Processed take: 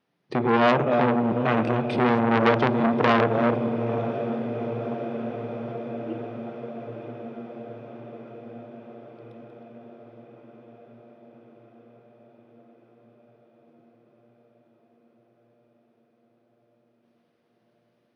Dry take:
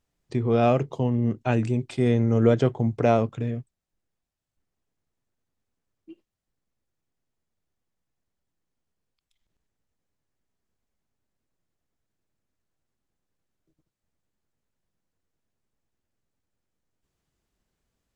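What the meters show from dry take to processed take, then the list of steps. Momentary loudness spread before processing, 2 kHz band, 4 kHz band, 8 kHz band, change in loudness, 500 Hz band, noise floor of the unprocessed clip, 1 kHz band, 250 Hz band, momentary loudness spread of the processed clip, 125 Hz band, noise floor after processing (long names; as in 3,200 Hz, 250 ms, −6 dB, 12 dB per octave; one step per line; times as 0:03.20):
10 LU, +10.5 dB, +8.0 dB, can't be measured, −1.0 dB, +2.5 dB, −85 dBFS, +7.5 dB, +2.5 dB, 21 LU, −4.5 dB, −68 dBFS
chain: delay that plays each chunk backwards 409 ms, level −8 dB
high-pass filter 150 Hz 24 dB per octave
in parallel at −2 dB: downward compressor, threshold −27 dBFS, peak gain reduction 12.5 dB
on the sum: moving average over 6 samples
pitch vibrato 0.4 Hz 5.4 cents
on a send: feedback delay with all-pass diffusion 894 ms, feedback 70%, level −12.5 dB
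on the sum: spring reverb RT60 3 s, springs 52 ms, chirp 60 ms, DRR 11 dB
saturating transformer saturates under 1,500 Hz
level +3.5 dB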